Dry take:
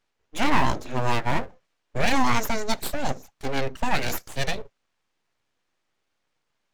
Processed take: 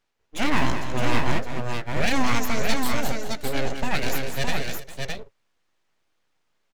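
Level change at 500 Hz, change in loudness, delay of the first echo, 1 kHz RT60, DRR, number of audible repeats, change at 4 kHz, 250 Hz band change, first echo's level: +1.0 dB, 0.0 dB, 202 ms, no reverb, no reverb, 3, +2.0 dB, +1.5 dB, -8.5 dB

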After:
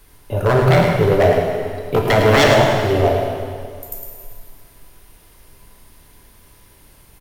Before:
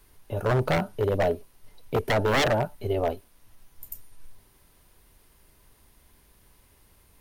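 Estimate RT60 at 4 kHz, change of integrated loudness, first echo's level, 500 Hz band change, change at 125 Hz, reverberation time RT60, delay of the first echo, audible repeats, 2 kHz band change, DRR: 2.0 s, +10.5 dB, -7.0 dB, +11.5 dB, +12.0 dB, 2.1 s, 107 ms, 1, +10.5 dB, -0.5 dB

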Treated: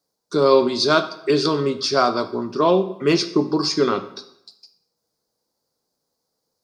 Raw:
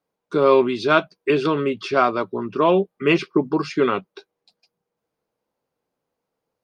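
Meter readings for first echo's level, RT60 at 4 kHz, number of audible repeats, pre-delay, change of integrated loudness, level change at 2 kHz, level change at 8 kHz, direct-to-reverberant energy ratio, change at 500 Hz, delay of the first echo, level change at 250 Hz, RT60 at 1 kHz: no echo, 0.60 s, no echo, 8 ms, +0.5 dB, -3.0 dB, no reading, 9.5 dB, +0.5 dB, no echo, +0.5 dB, 0.75 s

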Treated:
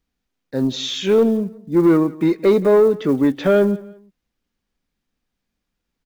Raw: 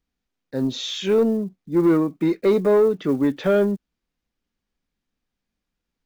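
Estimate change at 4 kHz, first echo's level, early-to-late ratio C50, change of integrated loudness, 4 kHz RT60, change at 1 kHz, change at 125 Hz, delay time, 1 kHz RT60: +3.5 dB, -21.0 dB, no reverb, +3.5 dB, no reverb, +3.5 dB, +3.5 dB, 173 ms, no reverb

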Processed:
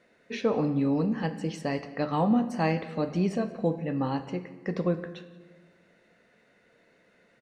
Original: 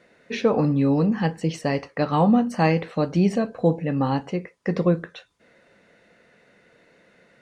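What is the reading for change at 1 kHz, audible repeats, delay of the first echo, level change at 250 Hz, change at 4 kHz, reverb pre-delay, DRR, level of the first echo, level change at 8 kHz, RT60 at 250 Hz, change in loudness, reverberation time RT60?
-6.5 dB, 1, 179 ms, -6.0 dB, -6.0 dB, 3 ms, 10.5 dB, -22.5 dB, no reading, 1.8 s, -6.0 dB, 1.4 s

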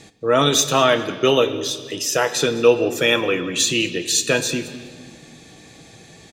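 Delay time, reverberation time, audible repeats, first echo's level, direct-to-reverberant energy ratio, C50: 205 ms, 1.7 s, 2, -20.5 dB, 8.5 dB, 12.0 dB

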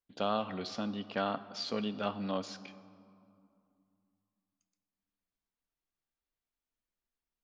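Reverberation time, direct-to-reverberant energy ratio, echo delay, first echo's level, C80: 2.5 s, 12.0 dB, no echo, no echo, 16.0 dB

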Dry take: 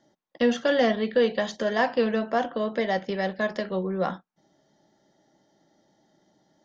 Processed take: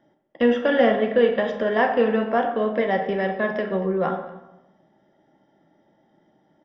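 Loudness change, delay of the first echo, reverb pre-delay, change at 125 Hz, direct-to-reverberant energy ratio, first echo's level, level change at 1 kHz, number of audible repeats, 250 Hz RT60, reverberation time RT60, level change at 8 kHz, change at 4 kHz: +4.0 dB, 235 ms, 25 ms, +3.0 dB, 5.5 dB, -19.5 dB, +4.5 dB, 1, 1.0 s, 0.95 s, no reading, -1.5 dB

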